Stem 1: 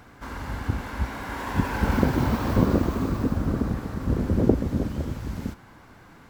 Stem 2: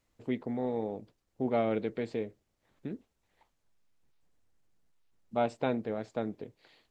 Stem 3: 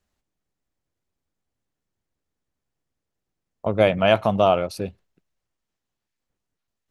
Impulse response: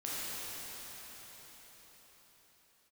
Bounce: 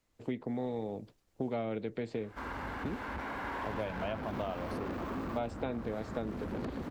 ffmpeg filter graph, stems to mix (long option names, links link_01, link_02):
-filter_complex "[0:a]bass=frequency=250:gain=-7,treble=frequency=4000:gain=-10,asoftclip=type=tanh:threshold=-29.5dB,adelay=2150,volume=-0.5dB[link_01];[1:a]dynaudnorm=framelen=140:gausssize=3:maxgain=6.5dB,volume=-1.5dB[link_02];[2:a]volume=-11.5dB[link_03];[link_01][link_02][link_03]amix=inputs=3:normalize=0,acrossover=split=150|2800[link_04][link_05][link_06];[link_04]acompressor=threshold=-45dB:ratio=4[link_07];[link_05]acompressor=threshold=-35dB:ratio=4[link_08];[link_06]acompressor=threshold=-58dB:ratio=4[link_09];[link_07][link_08][link_09]amix=inputs=3:normalize=0"